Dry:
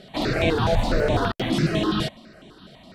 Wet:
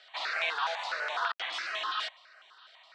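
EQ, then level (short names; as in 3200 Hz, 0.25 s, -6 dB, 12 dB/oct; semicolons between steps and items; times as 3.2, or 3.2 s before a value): HPF 1000 Hz 24 dB/oct; LPF 7400 Hz 24 dB/oct; high shelf 3800 Hz -10 dB; 0.0 dB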